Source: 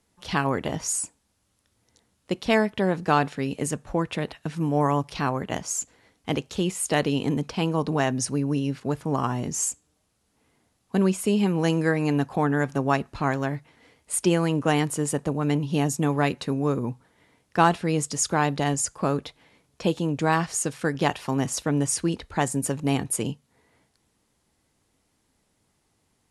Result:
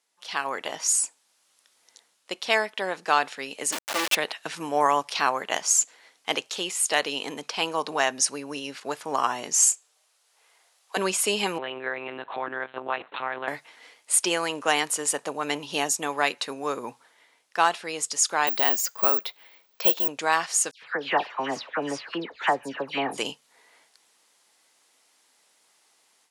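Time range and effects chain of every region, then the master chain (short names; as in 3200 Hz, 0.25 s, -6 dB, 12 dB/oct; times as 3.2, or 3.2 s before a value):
3.72–4.15 minimum comb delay 3.4 ms + companded quantiser 2-bit
9.62–10.97 HPF 440 Hz 24 dB/oct + doubler 29 ms -13 dB
11.58–13.48 compressor 3:1, threshold -29 dBFS + monotone LPC vocoder at 8 kHz 130 Hz
18.47–20.08 LPF 5400 Hz + careless resampling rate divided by 2×, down filtered, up zero stuff
20.71–23.18 air absorption 340 m + dispersion lows, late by 0.114 s, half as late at 2200 Hz
whole clip: HPF 620 Hz 12 dB/oct; bell 4700 Hz +5 dB 2.7 oct; AGC gain up to 11.5 dB; gain -5.5 dB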